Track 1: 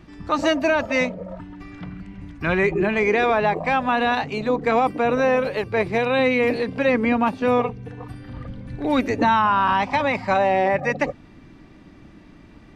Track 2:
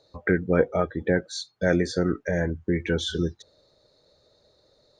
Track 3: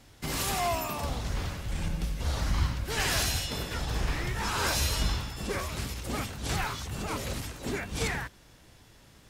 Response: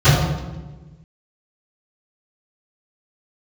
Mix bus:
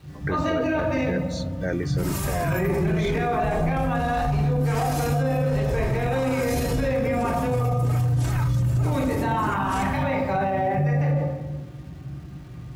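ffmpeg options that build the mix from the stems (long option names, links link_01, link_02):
-filter_complex "[0:a]acrusher=bits=7:mix=0:aa=0.000001,volume=-9.5dB,asplit=2[link_01][link_02];[link_02]volume=-20.5dB[link_03];[1:a]volume=-5dB[link_04];[2:a]equalizer=frequency=3700:width_type=o:width=1.7:gain=-9,aecho=1:1:3.2:0.65,adelay=1750,volume=0.5dB[link_05];[3:a]atrim=start_sample=2205[link_06];[link_03][link_06]afir=irnorm=-1:irlink=0[link_07];[link_01][link_04][link_05][link_07]amix=inputs=4:normalize=0,alimiter=limit=-16dB:level=0:latency=1:release=17"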